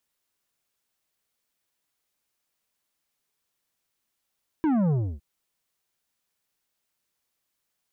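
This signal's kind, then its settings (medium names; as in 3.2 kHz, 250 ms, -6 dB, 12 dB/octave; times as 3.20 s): sub drop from 330 Hz, over 0.56 s, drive 9.5 dB, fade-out 0.29 s, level -21 dB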